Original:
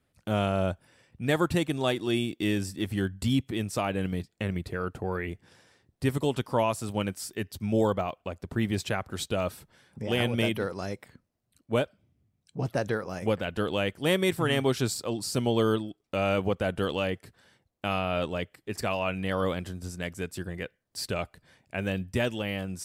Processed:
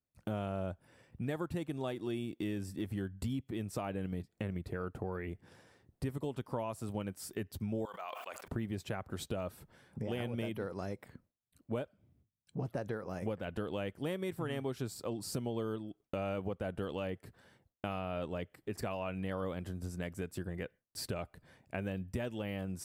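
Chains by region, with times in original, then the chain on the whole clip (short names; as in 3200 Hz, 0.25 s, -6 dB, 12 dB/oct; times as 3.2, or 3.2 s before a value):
7.85–8.48 HPF 1200 Hz + sustainer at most 46 dB/s
whole clip: gate with hold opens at -60 dBFS; bell 5000 Hz -8 dB 3 oct; compressor 4:1, threshold -37 dBFS; gain +1 dB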